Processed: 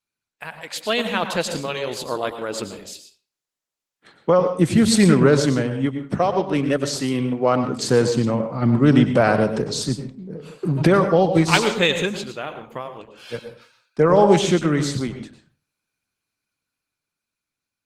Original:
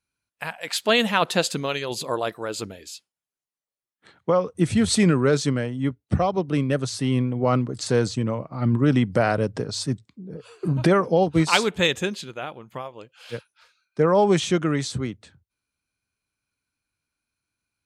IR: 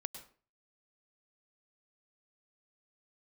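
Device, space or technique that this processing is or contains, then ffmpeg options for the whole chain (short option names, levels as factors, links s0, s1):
far-field microphone of a smart speaker: -filter_complex "[0:a]asplit=3[s0][s1][s2];[s0]afade=t=out:st=5.85:d=0.02[s3];[s1]highpass=f=250:p=1,afade=t=in:st=5.85:d=0.02,afade=t=out:st=7.63:d=0.02[s4];[s2]afade=t=in:st=7.63:d=0.02[s5];[s3][s4][s5]amix=inputs=3:normalize=0[s6];[1:a]atrim=start_sample=2205[s7];[s6][s7]afir=irnorm=-1:irlink=0,highpass=120,dynaudnorm=f=350:g=11:m=2.99" -ar 48000 -c:a libopus -b:a 16k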